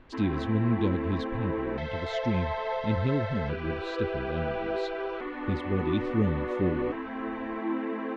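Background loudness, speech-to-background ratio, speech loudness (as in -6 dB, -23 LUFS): -33.0 LUFS, 1.5 dB, -31.5 LUFS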